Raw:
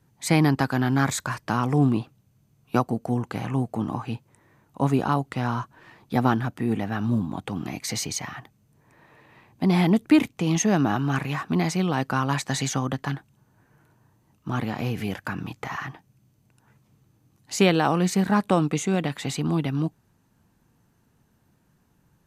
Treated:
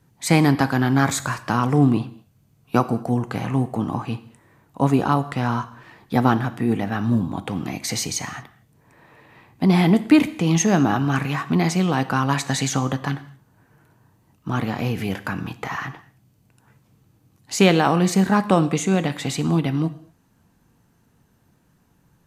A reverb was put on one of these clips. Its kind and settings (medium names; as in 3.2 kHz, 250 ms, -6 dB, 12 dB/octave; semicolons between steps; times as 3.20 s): gated-style reverb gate 260 ms falling, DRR 11.5 dB; trim +3.5 dB